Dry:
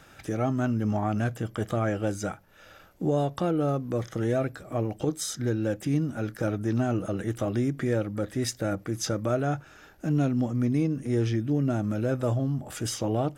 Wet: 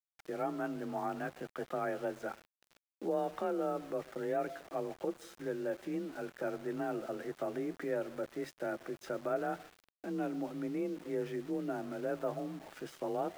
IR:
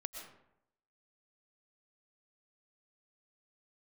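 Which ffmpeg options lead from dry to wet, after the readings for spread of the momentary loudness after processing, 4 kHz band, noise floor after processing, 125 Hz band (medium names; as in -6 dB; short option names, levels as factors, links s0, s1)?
7 LU, -15.0 dB, under -85 dBFS, -23.0 dB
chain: -filter_complex "[0:a]acrossover=split=260 2700:gain=0.126 1 0.1[s0][s1][s2];[s0][s1][s2]amix=inputs=3:normalize=0,asplit=2[s3][s4];[1:a]atrim=start_sample=2205[s5];[s4][s5]afir=irnorm=-1:irlink=0,volume=0.335[s6];[s3][s6]amix=inputs=2:normalize=0,afreqshift=31,aeval=exprs='val(0)*gte(abs(val(0)),0.00794)':c=same,volume=0.398"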